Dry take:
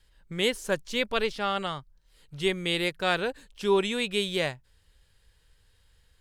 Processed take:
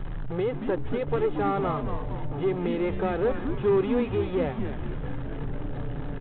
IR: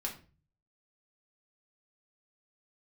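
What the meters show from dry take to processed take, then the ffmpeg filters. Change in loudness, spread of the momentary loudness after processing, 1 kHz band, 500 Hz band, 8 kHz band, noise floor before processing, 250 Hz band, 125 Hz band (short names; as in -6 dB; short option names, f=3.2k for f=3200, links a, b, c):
0.0 dB, 11 LU, +1.0 dB, +3.0 dB, under -35 dB, -65 dBFS, +5.5 dB, +9.0 dB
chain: -filter_complex "[0:a]aeval=exprs='val(0)+0.5*0.0422*sgn(val(0))':c=same,alimiter=limit=-17dB:level=0:latency=1:release=156,equalizer=f=80:w=0.86:g=-9.5,aecho=1:1:2.4:0.54,aeval=exprs='val(0)*gte(abs(val(0)),0.02)':c=same,lowpass=1k,equalizer=f=170:w=1.3:g=5,aeval=exprs='0.188*(cos(1*acos(clip(val(0)/0.188,-1,1)))-cos(1*PI/2))+0.0015*(cos(3*acos(clip(val(0)/0.188,-1,1)))-cos(3*PI/2))+0.00299*(cos(4*acos(clip(val(0)/0.188,-1,1)))-cos(4*PI/2))+0.0119*(cos(5*acos(clip(val(0)/0.188,-1,1)))-cos(5*PI/2))+0.00237*(cos(8*acos(clip(val(0)/0.188,-1,1)))-cos(8*PI/2))':c=same,asplit=9[a][b][c][d][e][f][g][h][i];[b]adelay=228,afreqshift=-150,volume=-7dB[j];[c]adelay=456,afreqshift=-300,volume=-11.3dB[k];[d]adelay=684,afreqshift=-450,volume=-15.6dB[l];[e]adelay=912,afreqshift=-600,volume=-19.9dB[m];[f]adelay=1140,afreqshift=-750,volume=-24.2dB[n];[g]adelay=1368,afreqshift=-900,volume=-28.5dB[o];[h]adelay=1596,afreqshift=-1050,volume=-32.8dB[p];[i]adelay=1824,afreqshift=-1200,volume=-37.1dB[q];[a][j][k][l][m][n][o][p][q]amix=inputs=9:normalize=0" -ar 8000 -c:a adpcm_g726 -b:a 32k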